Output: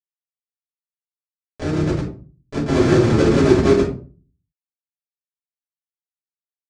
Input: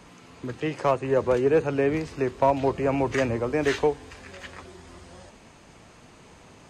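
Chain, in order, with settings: backward echo that repeats 112 ms, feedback 44%, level -4 dB; Doppler pass-by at 2.66 s, 34 m/s, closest 5.4 m; bass shelf 210 Hz +9.5 dB; de-hum 387 Hz, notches 28; slow attack 686 ms; in parallel at 0 dB: peak limiter -28.5 dBFS, peak gain reduction 9 dB; on the sum: Schmitt trigger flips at -28 dBFS; companded quantiser 2-bit; cabinet simulation 120–7300 Hz, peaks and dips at 380 Hz +7 dB, 1 kHz -5 dB, 3 kHz -5 dB; simulated room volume 210 m³, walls furnished, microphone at 5.8 m; trim -1 dB

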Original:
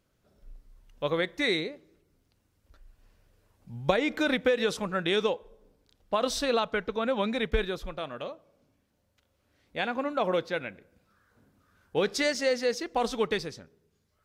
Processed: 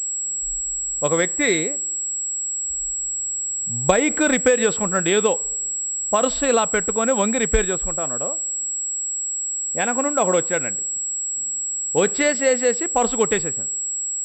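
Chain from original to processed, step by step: level-controlled noise filter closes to 540 Hz, open at -22 dBFS; class-D stage that switches slowly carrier 7.7 kHz; trim +8 dB

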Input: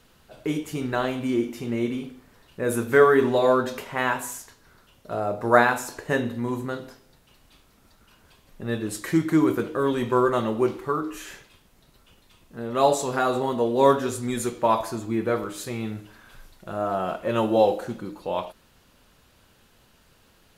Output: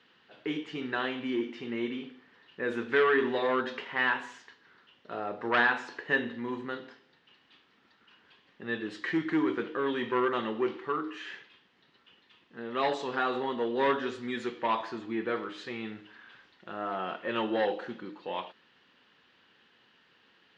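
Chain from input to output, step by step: saturation -13.5 dBFS, distortion -14 dB; cabinet simulation 240–4400 Hz, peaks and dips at 620 Hz -8 dB, 1.8 kHz +8 dB, 3 kHz +6 dB; trim -4.5 dB

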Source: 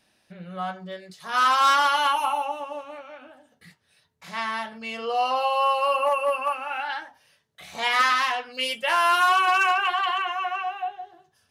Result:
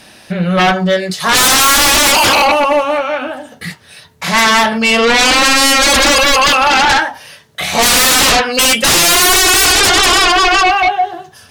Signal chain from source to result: sine folder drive 15 dB, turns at -13.5 dBFS; trim +7 dB

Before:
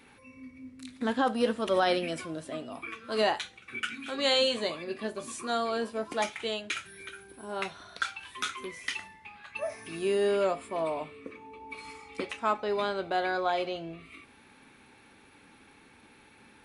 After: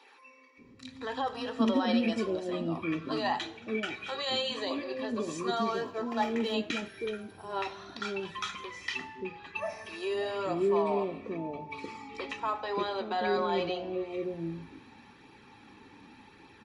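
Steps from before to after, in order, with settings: 5.56–6.54 s: median filter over 9 samples; peak limiter -23 dBFS, peak gain reduction 9.5 dB; flange 0.85 Hz, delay 0.2 ms, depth 2.1 ms, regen -51%; bands offset in time highs, lows 580 ms, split 470 Hz; reverberation RT60 1.1 s, pre-delay 3 ms, DRR 14 dB

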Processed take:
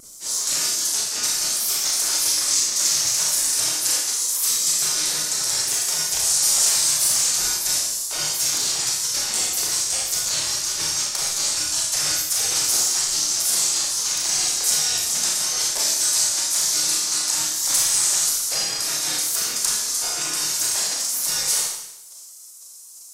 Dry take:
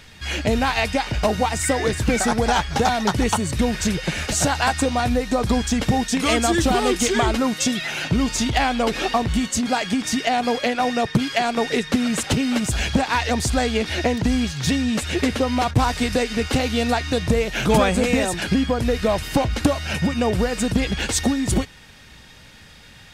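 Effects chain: spectral gate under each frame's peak -25 dB weak; resonant high shelf 4.2 kHz +12.5 dB, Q 1.5; in parallel at +1.5 dB: peak limiter -15 dBFS, peak gain reduction 11.5 dB; on the sum: vibrato 0.74 Hz 9.3 cents; Schroeder reverb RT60 0.86 s, combs from 26 ms, DRR -2.5 dB; trim -5.5 dB

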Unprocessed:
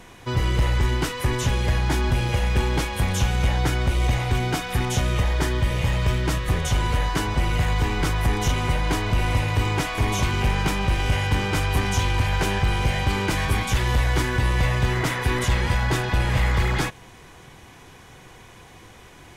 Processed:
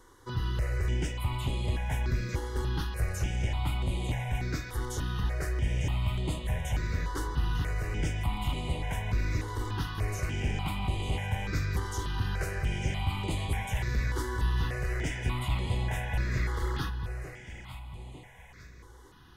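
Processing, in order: on a send: echo whose repeats swap between lows and highs 450 ms, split 930 Hz, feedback 61%, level -6 dB; on the sum: stepped phaser 3.4 Hz 670–5600 Hz; trim -8.5 dB

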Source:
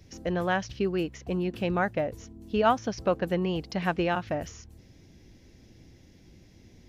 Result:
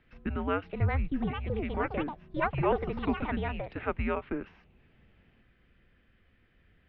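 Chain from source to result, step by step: 0.70–1.13 s: tilt EQ -3.5 dB/octave; ever faster or slower copies 547 ms, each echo +6 st, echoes 2; gain riding 2 s; mistuned SSB -290 Hz 290–3200 Hz; trim -4.5 dB

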